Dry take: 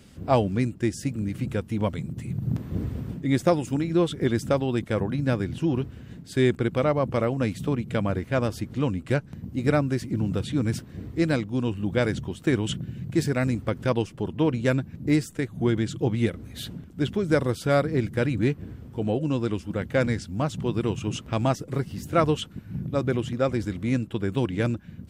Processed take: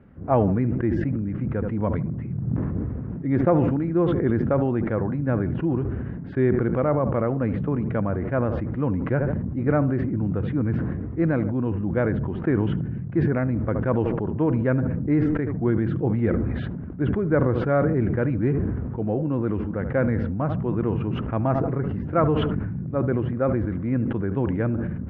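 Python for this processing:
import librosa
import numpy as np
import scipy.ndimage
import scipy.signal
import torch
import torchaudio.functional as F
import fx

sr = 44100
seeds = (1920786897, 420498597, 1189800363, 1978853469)

p1 = scipy.signal.sosfilt(scipy.signal.butter(4, 1700.0, 'lowpass', fs=sr, output='sos'), x)
p2 = p1 + fx.echo_tape(p1, sr, ms=74, feedback_pct=49, wet_db=-16, lp_hz=1100.0, drive_db=5.0, wow_cents=27, dry=0)
y = fx.sustainer(p2, sr, db_per_s=24.0)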